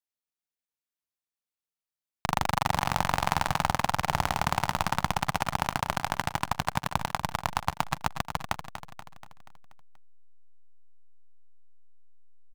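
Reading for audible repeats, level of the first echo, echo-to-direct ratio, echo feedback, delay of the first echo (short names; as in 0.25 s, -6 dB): 5, -10.0 dB, -8.5 dB, 55%, 0.24 s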